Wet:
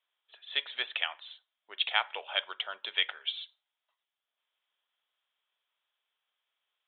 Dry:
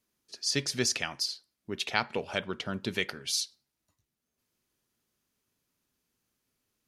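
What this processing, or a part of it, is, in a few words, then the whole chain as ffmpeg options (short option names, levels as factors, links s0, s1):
musical greeting card: -af "aresample=8000,aresample=44100,highpass=f=670:w=0.5412,highpass=f=670:w=1.3066,equalizer=f=3300:t=o:w=0.27:g=9"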